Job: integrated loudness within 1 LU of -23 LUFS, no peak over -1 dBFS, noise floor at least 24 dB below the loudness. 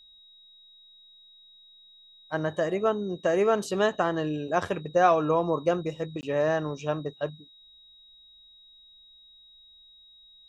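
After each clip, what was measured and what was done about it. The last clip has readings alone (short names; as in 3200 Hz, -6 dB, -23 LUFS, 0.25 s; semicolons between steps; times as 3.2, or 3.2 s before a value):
dropouts 1; longest dropout 19 ms; steady tone 3800 Hz; tone level -52 dBFS; loudness -27.0 LUFS; peak -9.0 dBFS; loudness target -23.0 LUFS
-> interpolate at 6.21, 19 ms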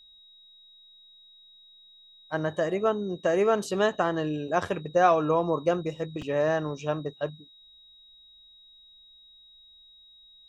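dropouts 0; steady tone 3800 Hz; tone level -52 dBFS
-> notch 3800 Hz, Q 30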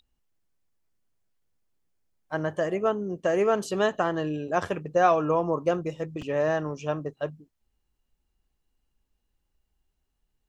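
steady tone none; loudness -27.0 LUFS; peak -9.0 dBFS; loudness target -23.0 LUFS
-> gain +4 dB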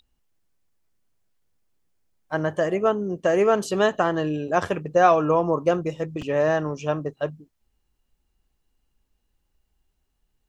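loudness -23.0 LUFS; peak -5.0 dBFS; noise floor -74 dBFS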